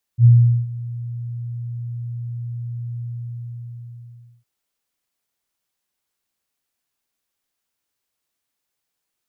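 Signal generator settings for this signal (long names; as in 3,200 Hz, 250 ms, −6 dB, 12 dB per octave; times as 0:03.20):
note with an ADSR envelope sine 119 Hz, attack 69 ms, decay 415 ms, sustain −20 dB, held 2.82 s, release 1,440 ms −5.5 dBFS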